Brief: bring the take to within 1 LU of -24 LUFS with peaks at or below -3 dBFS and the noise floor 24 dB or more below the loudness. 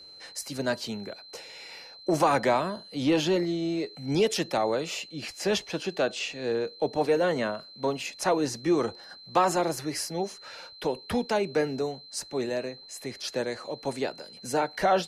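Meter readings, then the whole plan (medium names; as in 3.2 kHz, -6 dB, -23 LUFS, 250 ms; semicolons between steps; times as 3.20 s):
steady tone 4.1 kHz; tone level -46 dBFS; loudness -29.0 LUFS; peak level -12.0 dBFS; loudness target -24.0 LUFS
-> band-stop 4.1 kHz, Q 30; trim +5 dB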